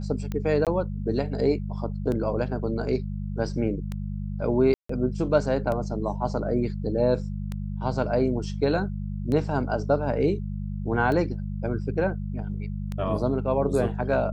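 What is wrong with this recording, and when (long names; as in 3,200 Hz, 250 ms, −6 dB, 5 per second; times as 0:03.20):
mains hum 50 Hz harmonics 4 −31 dBFS
scratch tick 33 1/3 rpm −19 dBFS
0:00.65–0:00.67: drop-out 17 ms
0:04.74–0:04.89: drop-out 154 ms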